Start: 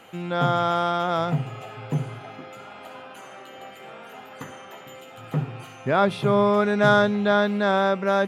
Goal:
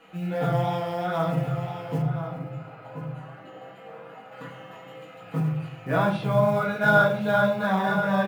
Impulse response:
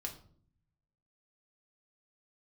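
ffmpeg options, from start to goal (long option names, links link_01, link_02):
-filter_complex "[0:a]lowpass=frequency=3400:poles=1,bandreject=frequency=50:width_type=h:width=6,bandreject=frequency=100:width_type=h:width=6,bandreject=frequency=150:width_type=h:width=6,aecho=1:1:6.2:0.83,flanger=delay=19:depth=4.3:speed=2.6,acrusher=bits=8:mode=log:mix=0:aa=0.000001,aecho=1:1:1030:0.355[link_01];[1:a]atrim=start_sample=2205,afade=type=out:start_time=0.35:duration=0.01,atrim=end_sample=15876[link_02];[link_01][link_02]afir=irnorm=-1:irlink=0,asplit=3[link_03][link_04][link_05];[link_03]afade=type=out:start_time=2.01:duration=0.02[link_06];[link_04]adynamicequalizer=threshold=0.00251:dfrequency=1800:dqfactor=0.7:tfrequency=1800:tqfactor=0.7:attack=5:release=100:ratio=0.375:range=3.5:mode=cutabove:tftype=highshelf,afade=type=in:start_time=2.01:duration=0.02,afade=type=out:start_time=4.31:duration=0.02[link_07];[link_05]afade=type=in:start_time=4.31:duration=0.02[link_08];[link_06][link_07][link_08]amix=inputs=3:normalize=0"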